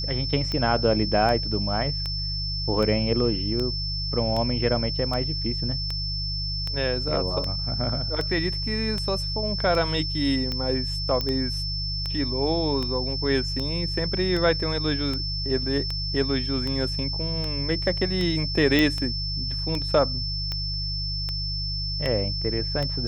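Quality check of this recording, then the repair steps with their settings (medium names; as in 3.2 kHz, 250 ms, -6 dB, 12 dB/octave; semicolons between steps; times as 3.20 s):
hum 50 Hz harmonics 3 -31 dBFS
tick 78 rpm -16 dBFS
whine 5.3 kHz -29 dBFS
11.21 s: pop -13 dBFS
18.79 s: pop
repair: de-click; de-hum 50 Hz, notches 3; band-stop 5.3 kHz, Q 30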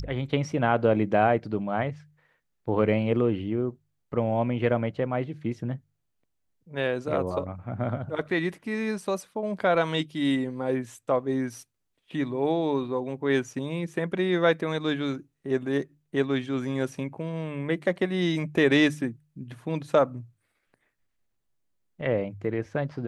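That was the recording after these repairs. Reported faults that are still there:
nothing left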